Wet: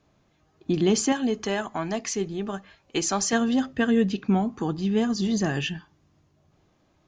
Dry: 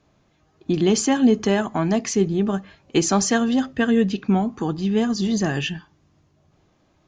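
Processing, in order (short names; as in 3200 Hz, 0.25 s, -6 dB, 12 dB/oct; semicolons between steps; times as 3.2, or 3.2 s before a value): 1.12–3.33 bell 170 Hz -8 dB 2.9 oct; gain -3 dB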